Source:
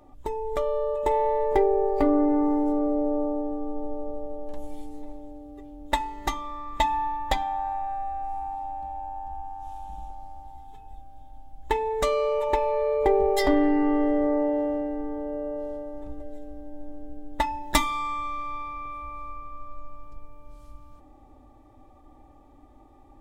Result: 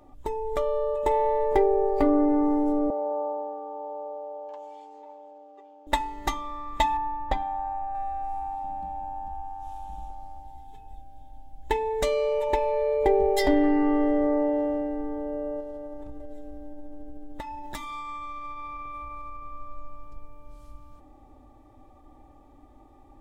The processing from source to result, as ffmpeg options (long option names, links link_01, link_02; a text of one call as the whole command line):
ffmpeg -i in.wav -filter_complex "[0:a]asettb=1/sr,asplit=3[link_01][link_02][link_03];[link_01]atrim=end=2.904[link_04];[link_02]atrim=start=2.9:end=5.87,asetpts=PTS-STARTPTS,afade=type=in:duration=0.004:curve=qsin,afade=type=out:start_time=2.966:duration=0.004:curve=qsin,highpass=frequency=460:width=0.5412,highpass=frequency=460:width=1.3066,equalizer=frequency=910:width_type=q:width=4:gain=8,equalizer=frequency=1900:width_type=q:width=4:gain=-5,equalizer=frequency=3900:width_type=q:width=4:gain=-7,equalizer=frequency=5500:width_type=q:width=4:gain=-5,lowpass=frequency=6000:width=0.5412,lowpass=frequency=6000:width=1.3066[link_05];[link_03]atrim=start=5.866[link_06];[link_04][link_05]acrossfade=duration=0.004:curve1=hsin:curve2=qsin[link_07];[link_07][link_06]acrossfade=duration=0.004:curve1=qsin:curve2=hsin,asettb=1/sr,asplit=3[link_08][link_09][link_10];[link_08]atrim=end=6.974[link_11];[link_09]atrim=start=6.97:end=7.95,asetpts=PTS-STARTPTS,afade=type=in:duration=0.004:curve=qsin,afade=type=out:start_time=0.976:duration=0.004:curve=qsin,lowpass=frequency=1100:poles=1[link_12];[link_10]atrim=start=7.946[link_13];[link_11][link_12]acrossfade=duration=0.004:curve1=hsin:curve2=qsin[link_14];[link_14][link_13]acrossfade=duration=0.004:curve1=qsin:curve2=hsin,asettb=1/sr,asplit=3[link_15][link_16][link_17];[link_15]atrim=end=8.644[link_18];[link_16]atrim=start=8.64:end=9.29,asetpts=PTS-STARTPTS,afade=type=in:duration=0.004:curve=qsin,afade=type=out:start_time=0.646:duration=0.004:curve=qsin,equalizer=frequency=200:width_type=o:width=0.77:gain=12[link_19];[link_17]atrim=start=9.286[link_20];[link_18][link_19]acrossfade=duration=0.004:curve1=hsin:curve2=qsin[link_21];[link_21][link_20]acrossfade=duration=0.004:curve1=qsin:curve2=hsin,asettb=1/sr,asplit=3[link_22][link_23][link_24];[link_22]atrim=end=10.384[link_25];[link_23]atrim=start=10.38:end=13.64,asetpts=PTS-STARTPTS,afade=type=in:duration=0.004:curve=qsin,afade=type=out:start_time=3.256:duration=0.004:curve=qsin,equalizer=frequency=1200:width=4.6:gain=-11[link_26];[link_24]atrim=start=13.636[link_27];[link_25][link_26]acrossfade=duration=0.004:curve1=hsin:curve2=qsin[link_28];[link_28][link_27]acrossfade=duration=0.004:curve1=qsin:curve2=hsin,asettb=1/sr,asplit=3[link_29][link_30][link_31];[link_29]atrim=end=15.604[link_32];[link_30]atrim=start=15.6:end=19.43,asetpts=PTS-STARTPTS,afade=type=in:duration=0.004:curve=qsin,afade=type=out:start_time=3.826:duration=0.004:curve=qsin,acompressor=threshold=-33dB:ratio=6:attack=3.2:release=140:knee=1:detection=peak[link_33];[link_31]atrim=start=19.426[link_34];[link_32][link_33]acrossfade=duration=0.004:curve1=hsin:curve2=qsin[link_35];[link_35][link_34]acrossfade=duration=0.004:curve1=qsin:curve2=hsin" out.wav